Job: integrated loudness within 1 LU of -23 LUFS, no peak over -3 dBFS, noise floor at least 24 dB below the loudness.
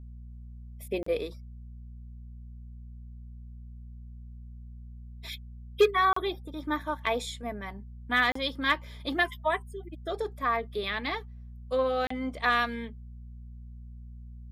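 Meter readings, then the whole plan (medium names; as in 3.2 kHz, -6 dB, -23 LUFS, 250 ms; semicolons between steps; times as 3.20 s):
dropouts 4; longest dropout 34 ms; hum 60 Hz; highest harmonic 240 Hz; hum level -42 dBFS; loudness -29.5 LUFS; peak level -13.0 dBFS; loudness target -23.0 LUFS
-> interpolate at 1.03/6.13/8.32/12.07 s, 34 ms; de-hum 60 Hz, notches 4; trim +6.5 dB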